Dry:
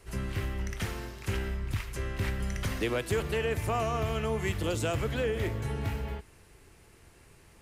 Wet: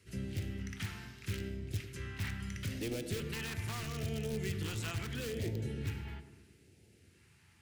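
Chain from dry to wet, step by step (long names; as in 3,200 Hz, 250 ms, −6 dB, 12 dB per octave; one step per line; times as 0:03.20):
high-pass filter 83 Hz 24 dB per octave
high-shelf EQ 4,900 Hz −8 dB
notch filter 1,100 Hz, Q 11
hum removal 135.7 Hz, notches 7
in parallel at −6.5 dB: wrap-around overflow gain 25.5 dB
on the sum: all-pass phaser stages 2, 0.77 Hz, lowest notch 470–1,100 Hz
feedback echo with a band-pass in the loop 104 ms, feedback 73%, band-pass 330 Hz, level −8 dB
on a send at −18 dB: convolution reverb RT60 1.0 s, pre-delay 4 ms
on the sum: level −6 dB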